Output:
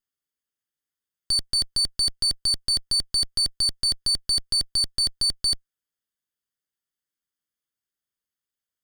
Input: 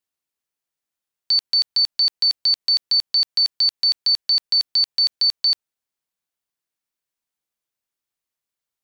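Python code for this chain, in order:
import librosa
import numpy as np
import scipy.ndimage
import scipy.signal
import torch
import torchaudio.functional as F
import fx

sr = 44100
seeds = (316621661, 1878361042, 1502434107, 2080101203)

y = fx.lower_of_two(x, sr, delay_ms=0.62)
y = y * librosa.db_to_amplitude(-3.0)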